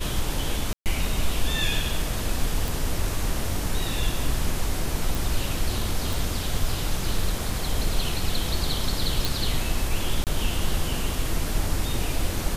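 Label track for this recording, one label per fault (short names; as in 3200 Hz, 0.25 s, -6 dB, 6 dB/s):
0.730000	0.860000	gap 0.128 s
2.680000	2.680000	pop
5.150000	5.150000	pop
6.130000	6.130000	pop
9.250000	9.250000	pop
10.240000	10.270000	gap 28 ms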